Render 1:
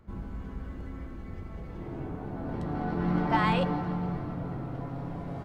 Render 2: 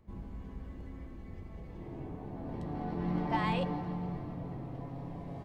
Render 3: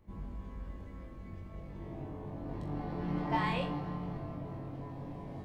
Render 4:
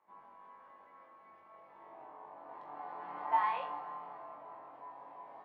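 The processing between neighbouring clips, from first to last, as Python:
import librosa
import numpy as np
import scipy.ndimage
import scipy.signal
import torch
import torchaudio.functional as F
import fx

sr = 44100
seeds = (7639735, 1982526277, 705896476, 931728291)

y1 = fx.peak_eq(x, sr, hz=1400.0, db=-14.5, octaves=0.21)
y1 = F.gain(torch.from_numpy(y1), -5.5).numpy()
y2 = fx.room_flutter(y1, sr, wall_m=3.6, rt60_s=0.31)
y2 = F.gain(torch.from_numpy(y2), -1.5).numpy()
y3 = fx.ladder_bandpass(y2, sr, hz=1100.0, resonance_pct=45)
y3 = F.gain(torch.from_numpy(y3), 10.5).numpy()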